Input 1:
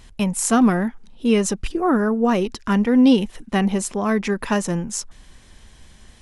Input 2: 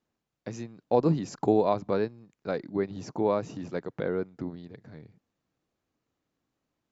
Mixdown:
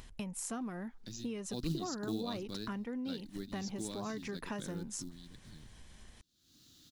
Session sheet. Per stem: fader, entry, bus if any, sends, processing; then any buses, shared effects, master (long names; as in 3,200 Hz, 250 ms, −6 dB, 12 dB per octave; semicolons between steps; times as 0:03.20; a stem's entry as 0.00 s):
−13.0 dB, 0.00 s, no send, downward compressor 12 to 1, threshold −24 dBFS, peak gain reduction 14.5 dB
+1.0 dB, 0.60 s, no send, flat-topped bell 680 Hz −14 dB; floating-point word with a short mantissa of 4 bits; high shelf with overshoot 2,900 Hz +9 dB, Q 3; automatic ducking −12 dB, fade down 1.30 s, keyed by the first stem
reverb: not used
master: upward compression, threshold −46 dBFS